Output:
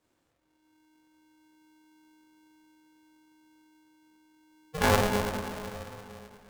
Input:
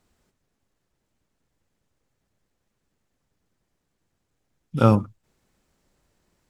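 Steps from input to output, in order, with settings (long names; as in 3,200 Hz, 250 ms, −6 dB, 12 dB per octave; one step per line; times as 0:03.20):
spring reverb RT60 3.1 s, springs 39/45/49 ms, chirp 25 ms, DRR 1.5 dB
multi-voice chorus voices 2, 0.97 Hz, delay 26 ms, depth 3 ms
ring modulator with a square carrier 310 Hz
level −3.5 dB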